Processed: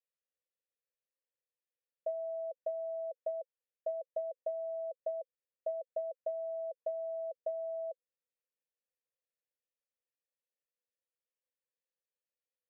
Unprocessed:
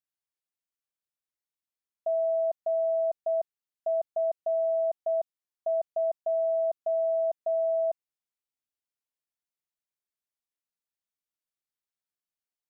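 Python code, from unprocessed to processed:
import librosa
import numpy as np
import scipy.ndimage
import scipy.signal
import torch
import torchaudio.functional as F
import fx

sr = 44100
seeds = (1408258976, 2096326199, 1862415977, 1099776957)

y = fx.env_lowpass_down(x, sr, base_hz=510.0, full_db=-24.5)
y = fx.vowel_filter(y, sr, vowel='e')
y = fx.small_body(y, sr, hz=(480.0,), ring_ms=45, db=9)
y = y * 10.0 ** (5.0 / 20.0)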